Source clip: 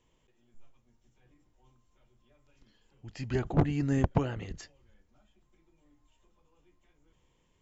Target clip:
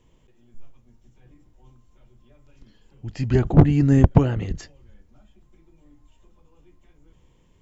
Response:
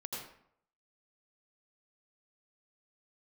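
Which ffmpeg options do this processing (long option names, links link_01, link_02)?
-af "lowshelf=frequency=410:gain=8.5,volume=5.5dB"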